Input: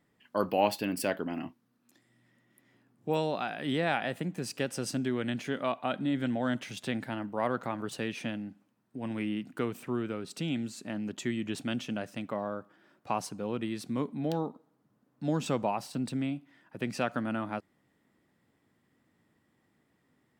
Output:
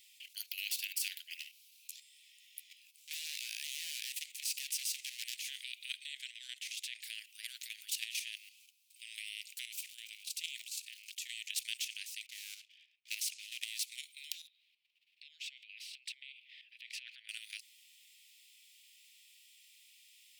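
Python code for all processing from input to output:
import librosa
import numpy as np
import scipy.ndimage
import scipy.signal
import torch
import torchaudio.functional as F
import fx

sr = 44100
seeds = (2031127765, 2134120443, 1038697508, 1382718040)

y = fx.chain(x, sr, fx.clip_hard(threshold_db=-31.0),
    fx.doubler(ms=13.0, db=-9), at=(1.39, 5.39))
y = fx.chain(y, sr, fx.tilt_eq(slope=-3.5),
    fx.band_squash(depth_pct=40), at=(5.96, 7.04))
y = fx.chain(y, sr, fx.peak_eq(hz=740.0, db=-12.5, octaves=1.2),
    fx.quant_float(bits=6), at=(8.36, 9.01))
y = fx.highpass(y, sr, hz=230.0, slope=12, at=(9.74, 11.29), fade=0.02)
y = fx.level_steps(y, sr, step_db=9, at=(9.74, 11.29), fade=0.02)
y = fx.dmg_crackle(y, sr, seeds[0], per_s=300.0, level_db=-60.0, at=(9.74, 11.29), fade=0.02)
y = fx.chain(y, sr, fx.env_lowpass(base_hz=1000.0, full_db=-30.5),
    fx.leveller(passes=1), at=(12.26, 13.83))
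y = fx.chain(y, sr, fx.air_absorb(metres=420.0),
    fx.over_compress(threshold_db=-38.0, ratio=-1.0), at=(14.47, 17.29))
y = scipy.signal.sosfilt(scipy.signal.butter(12, 2400.0, 'highpass', fs=sr, output='sos'), y)
y = fx.level_steps(y, sr, step_db=11)
y = fx.spectral_comp(y, sr, ratio=2.0)
y = y * librosa.db_to_amplitude(12.0)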